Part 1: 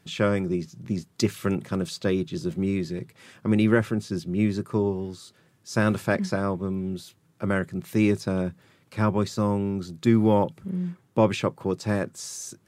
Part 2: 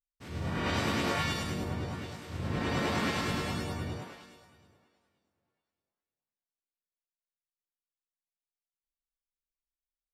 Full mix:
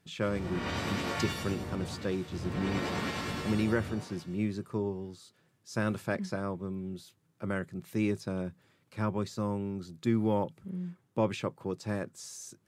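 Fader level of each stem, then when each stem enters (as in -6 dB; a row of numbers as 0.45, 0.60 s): -8.5, -3.5 dB; 0.00, 0.00 s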